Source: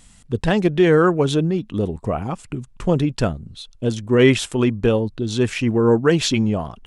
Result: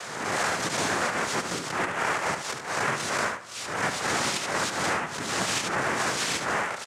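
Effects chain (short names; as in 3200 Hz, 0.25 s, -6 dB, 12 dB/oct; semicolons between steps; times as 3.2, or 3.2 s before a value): spectral swells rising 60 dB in 0.50 s; Chebyshev band-pass 610–2700 Hz, order 3; in parallel at +2 dB: limiter -17 dBFS, peak gain reduction 10.5 dB; on the sum: compressor, threshold -21 dBFS, peak gain reduction 9.5 dB; one-sided clip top -31 dBFS; noise vocoder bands 3; echo 72 ms -8.5 dB; on a send at -19 dB: reverb RT60 2.5 s, pre-delay 7 ms; on the sum: three-band squash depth 70%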